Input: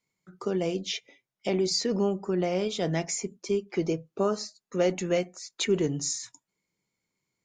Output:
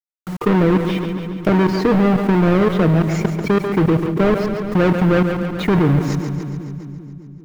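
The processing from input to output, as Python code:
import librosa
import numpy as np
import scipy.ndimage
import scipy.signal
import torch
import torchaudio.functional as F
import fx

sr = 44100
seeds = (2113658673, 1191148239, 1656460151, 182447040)

y = fx.halfwave_hold(x, sr)
y = scipy.signal.sosfilt(scipy.signal.butter(2, 2000.0, 'lowpass', fs=sr, output='sos'), y)
y = fx.low_shelf(y, sr, hz=330.0, db=7.5)
y = y + 0.46 * np.pad(y, (int(6.5 * sr / 1000.0), 0))[:len(y)]
y = fx.level_steps(y, sr, step_db=23)
y = fx.quant_dither(y, sr, seeds[0], bits=10, dither='none')
y = fx.echo_split(y, sr, split_hz=310.0, low_ms=198, high_ms=140, feedback_pct=52, wet_db=-12)
y = fx.env_flatten(y, sr, amount_pct=50)
y = y * 10.0 ** (8.5 / 20.0)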